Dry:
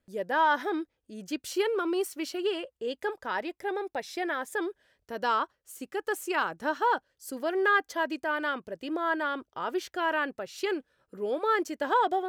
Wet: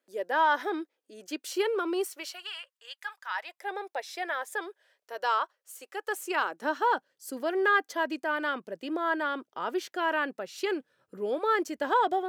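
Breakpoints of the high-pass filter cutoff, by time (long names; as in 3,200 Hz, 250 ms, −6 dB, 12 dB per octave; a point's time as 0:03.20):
high-pass filter 24 dB per octave
0:02.06 310 Hz
0:02.50 1,100 Hz
0:03.25 1,100 Hz
0:03.71 470 Hz
0:06.04 470 Hz
0:06.89 170 Hz
0:10.47 170 Hz
0:11.46 61 Hz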